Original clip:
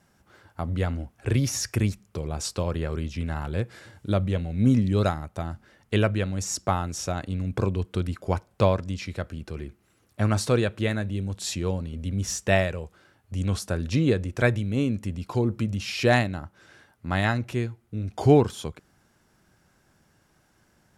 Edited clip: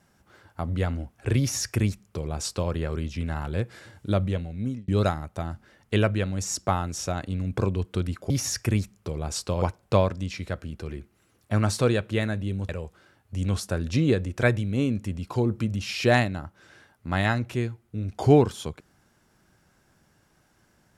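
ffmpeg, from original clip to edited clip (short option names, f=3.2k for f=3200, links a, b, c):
-filter_complex "[0:a]asplit=5[a][b][c][d][e];[a]atrim=end=4.88,asetpts=PTS-STARTPTS,afade=t=out:st=4.24:d=0.64[f];[b]atrim=start=4.88:end=8.302,asetpts=PTS-STARTPTS,afade=t=in:d=0.004:c=hsin[g];[c]atrim=start=1.388:end=2.712[h];[d]atrim=start=8.298:end=11.372[i];[e]atrim=start=12.678[j];[f][g]concat=n=2:v=0:a=1[k];[k][h]acrossfade=d=0.004:c1=hsin:c2=hsin[l];[l][i]acrossfade=d=0.004:c1=hsin:c2=hsin[m];[m][j]acrossfade=d=0.004:c1=hsin:c2=hsin"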